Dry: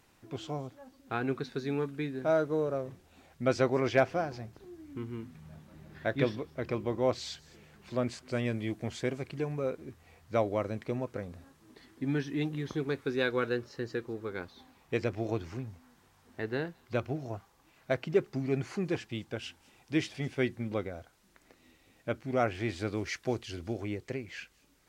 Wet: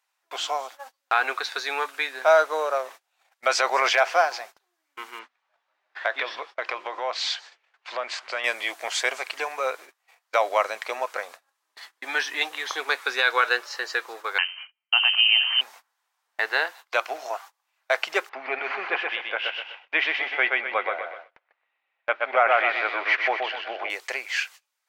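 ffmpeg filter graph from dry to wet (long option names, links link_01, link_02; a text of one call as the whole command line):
ffmpeg -i in.wav -filter_complex "[0:a]asettb=1/sr,asplit=3[link_01][link_02][link_03];[link_01]atrim=end=5.194[link_04];[link_02]atrim=start=5.19:end=8.44,asetpts=PTS-STARTPTS,afade=type=in:duration=0.004:curve=qsin,afade=type=out:start_time=3.246:duration=0.004:curve=qsin,lowpass=4000,bandreject=frequency=50:width_type=h:width=6,bandreject=frequency=100:width_type=h:width=6,bandreject=frequency=150:width_type=h:width=6,bandreject=frequency=200:width_type=h:width=6,acompressor=threshold=-32dB:ratio=4:attack=3.2:release=140:knee=1:detection=peak[link_05];[link_03]atrim=start=8.436[link_06];[link_04][link_05]acrossfade=duration=0.004:curve1=hsin:curve2=qsin[link_07];[link_07][link_06]acrossfade=duration=0.004:curve1=qsin:curve2=hsin,asettb=1/sr,asplit=3[link_08][link_09][link_10];[link_08]atrim=end=14.384[link_11];[link_09]atrim=start=14.38:end=15.61,asetpts=PTS-STARTPTS,afade=type=in:duration=0.004:curve=qsin,afade=type=out:start_time=1.226:duration=0.004:curve=qsin,agate=range=-15dB:threshold=-58dB:ratio=16:release=100:detection=peak,bandreject=frequency=45.64:width_type=h:width=4,bandreject=frequency=91.28:width_type=h:width=4,bandreject=frequency=136.92:width_type=h:width=4,bandreject=frequency=182.56:width_type=h:width=4,bandreject=frequency=228.2:width_type=h:width=4,bandreject=frequency=273.84:width_type=h:width=4,bandreject=frequency=319.48:width_type=h:width=4,bandreject=frequency=365.12:width_type=h:width=4,bandreject=frequency=410.76:width_type=h:width=4,bandreject=frequency=456.4:width_type=h:width=4,bandreject=frequency=502.04:width_type=h:width=4,bandreject=frequency=547.68:width_type=h:width=4,bandreject=frequency=593.32:width_type=h:width=4,bandreject=frequency=638.96:width_type=h:width=4,bandreject=frequency=684.6:width_type=h:width=4,bandreject=frequency=730.24:width_type=h:width=4,bandreject=frequency=775.88:width_type=h:width=4,bandreject=frequency=821.52:width_type=h:width=4,lowpass=frequency=2700:width_type=q:width=0.5098,lowpass=frequency=2700:width_type=q:width=0.6013,lowpass=frequency=2700:width_type=q:width=0.9,lowpass=frequency=2700:width_type=q:width=2.563,afreqshift=-3200[link_12];[link_10]atrim=start=15.606[link_13];[link_11][link_12]acrossfade=duration=0.004:curve1=hsin:curve2=qsin[link_14];[link_14][link_13]acrossfade=duration=0.004:curve1=qsin:curve2=hsin,asettb=1/sr,asplit=3[link_15][link_16][link_17];[link_15]atrim=end=18.294[link_18];[link_16]atrim=start=18.29:end=23.9,asetpts=PTS-STARTPTS,afade=type=in:duration=0.004:curve=qsin,afade=type=out:start_time=5.606:duration=0.004:curve=qsin,lowpass=frequency=2800:width=0.5412,lowpass=frequency=2800:width=1.3066,aecho=1:1:125|250|375|500|625:0.631|0.259|0.106|0.0435|0.0178,atrim=end_sample=247401[link_19];[link_17]atrim=start=23.896[link_20];[link_18][link_19]acrossfade=duration=0.004:curve1=hsin:curve2=qsin[link_21];[link_21][link_20]acrossfade=duration=0.004:curve1=qsin:curve2=hsin,highpass=frequency=750:width=0.5412,highpass=frequency=750:width=1.3066,agate=range=-27dB:threshold=-59dB:ratio=16:detection=peak,alimiter=level_in=25dB:limit=-1dB:release=50:level=0:latency=1,volume=-7.5dB" out.wav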